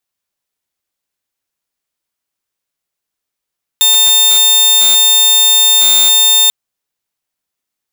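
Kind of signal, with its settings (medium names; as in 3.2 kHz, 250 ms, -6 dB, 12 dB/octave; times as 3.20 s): tone saw 3.6 kHz -3.5 dBFS 2.69 s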